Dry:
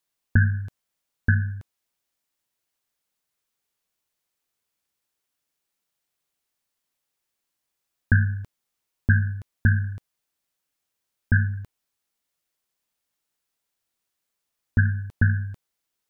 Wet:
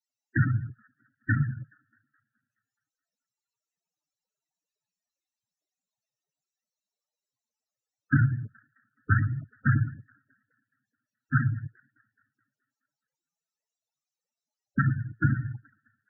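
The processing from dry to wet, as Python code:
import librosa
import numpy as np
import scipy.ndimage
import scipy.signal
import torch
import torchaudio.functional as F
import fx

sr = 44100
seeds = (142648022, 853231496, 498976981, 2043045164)

y = fx.echo_wet_bandpass(x, sr, ms=212, feedback_pct=55, hz=690.0, wet_db=-22.0)
y = fx.noise_vocoder(y, sr, seeds[0], bands=12)
y = fx.spec_topn(y, sr, count=16)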